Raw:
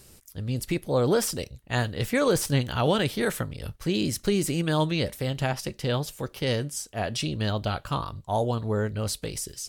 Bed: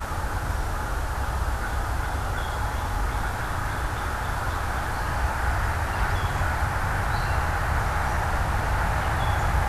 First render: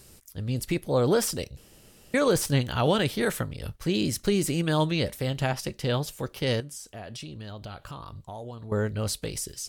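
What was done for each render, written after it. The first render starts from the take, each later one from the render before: 1.57–2.14 s: room tone; 6.60–8.72 s: compression 5:1, threshold -37 dBFS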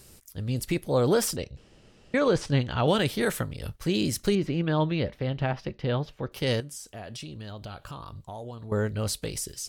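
1.36–2.88 s: distance through air 120 m; 4.35–6.32 s: distance through air 280 m; 7.70–8.15 s: band-stop 2 kHz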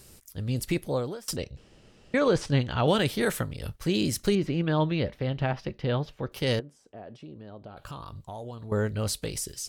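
0.86–1.28 s: fade out quadratic, to -23 dB; 6.59–7.77 s: band-pass filter 400 Hz, Q 0.7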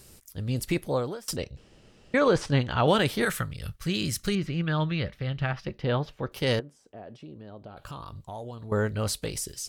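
3.25–5.67 s: time-frequency box 200–1100 Hz -7 dB; dynamic bell 1.2 kHz, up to +4 dB, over -40 dBFS, Q 0.76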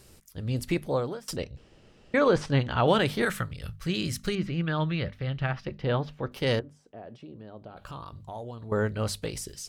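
treble shelf 5.6 kHz -7 dB; hum notches 50/100/150/200/250 Hz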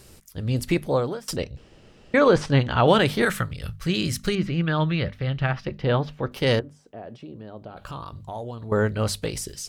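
trim +5 dB

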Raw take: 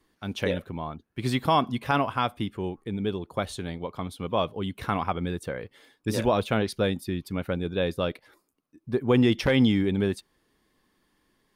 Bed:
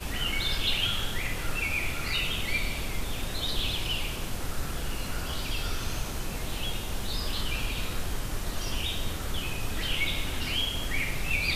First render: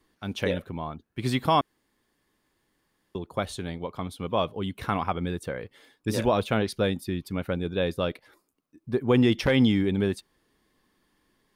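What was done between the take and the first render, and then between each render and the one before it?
1.61–3.15 s: room tone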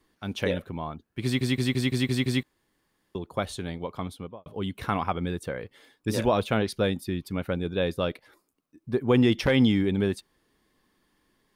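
1.24 s: stutter in place 0.17 s, 7 plays; 4.06–4.46 s: studio fade out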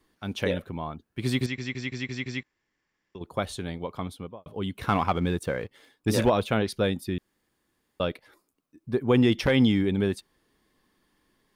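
1.46–3.21 s: rippled Chebyshev low-pass 7.6 kHz, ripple 9 dB; 4.87–6.30 s: waveshaping leveller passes 1; 7.18–8.00 s: room tone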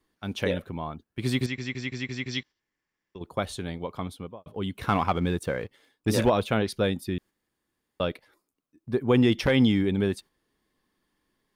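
2.32–2.59 s: time-frequency box 2.8–6.3 kHz +9 dB; gate -45 dBFS, range -6 dB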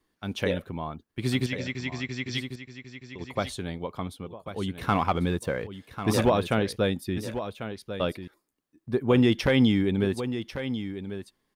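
delay 1094 ms -10.5 dB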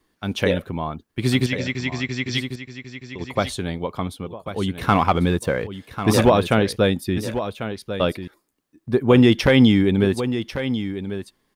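trim +7 dB

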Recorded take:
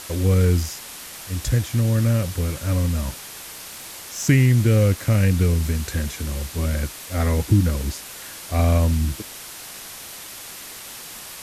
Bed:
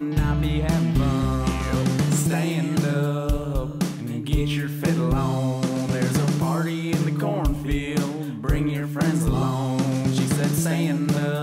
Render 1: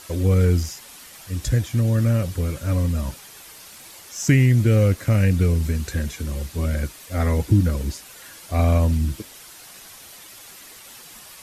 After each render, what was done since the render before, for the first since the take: noise reduction 8 dB, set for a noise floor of -38 dBFS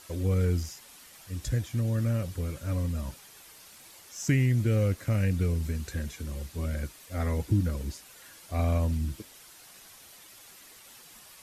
trim -8.5 dB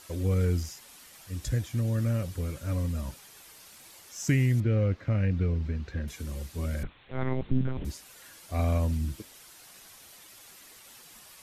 4.60–6.08 s: distance through air 240 m; 6.83–7.85 s: monotone LPC vocoder at 8 kHz 130 Hz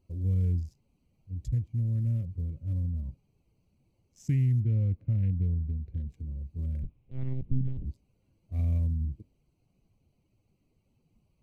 local Wiener filter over 25 samples; FFT filter 130 Hz 0 dB, 700 Hz -20 dB, 1.4 kHz -26 dB, 2.2 kHz -15 dB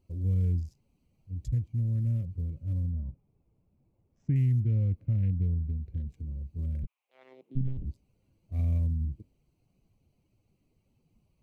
2.92–4.36 s: low-pass 1.4 kHz; 6.85–7.55 s: high-pass 1.1 kHz -> 310 Hz 24 dB/octave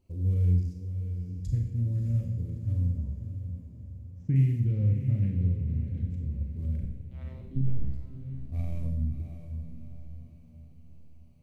echo that smears into a reverb 640 ms, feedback 45%, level -9 dB; Schroeder reverb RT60 0.81 s, combs from 30 ms, DRR 2 dB

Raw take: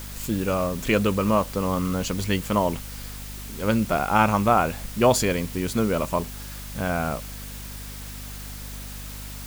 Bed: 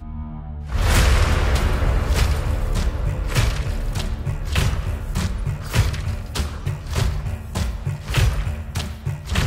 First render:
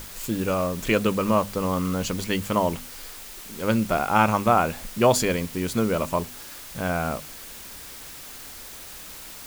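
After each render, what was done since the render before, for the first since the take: hum notches 50/100/150/200/250 Hz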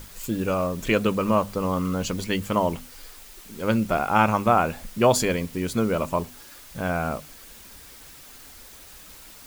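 noise reduction 6 dB, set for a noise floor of -41 dBFS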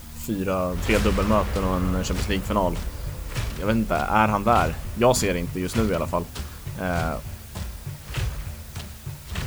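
add bed -9.5 dB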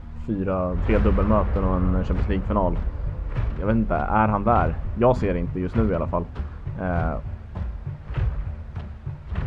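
low-pass 1.5 kHz 12 dB/octave; bass shelf 100 Hz +6 dB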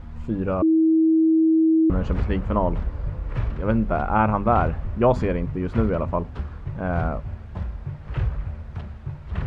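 0.62–1.90 s: bleep 321 Hz -14 dBFS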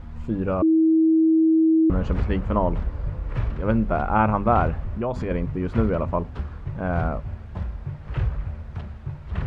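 4.82–5.31 s: compression 3:1, threshold -24 dBFS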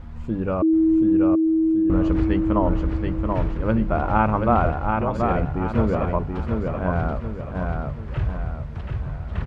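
feedback delay 731 ms, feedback 41%, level -4 dB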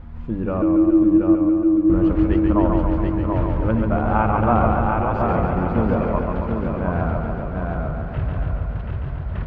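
distance through air 180 m; modulated delay 140 ms, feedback 69%, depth 92 cents, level -4 dB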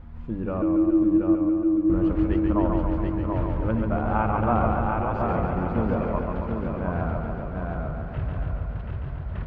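trim -5 dB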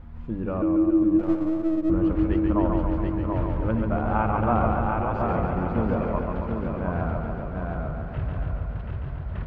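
1.19–1.90 s: partial rectifier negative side -7 dB

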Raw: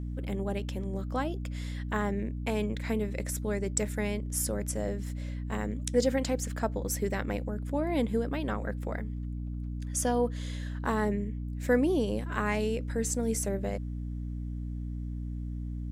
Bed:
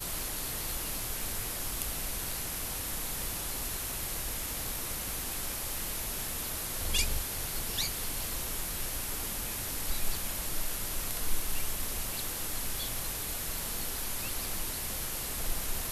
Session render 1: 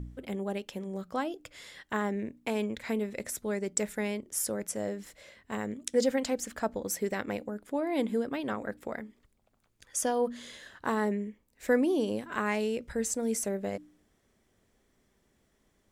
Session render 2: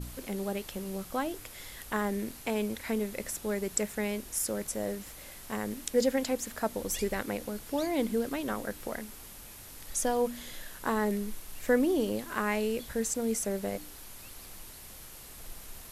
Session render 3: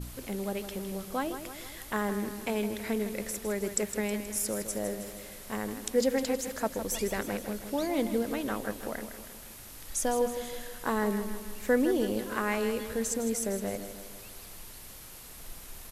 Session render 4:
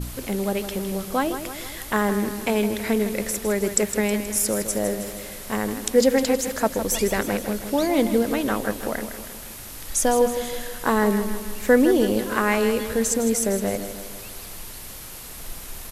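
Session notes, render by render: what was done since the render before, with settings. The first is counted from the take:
de-hum 60 Hz, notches 5
add bed -12 dB
feedback delay 159 ms, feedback 54%, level -10 dB
trim +9 dB

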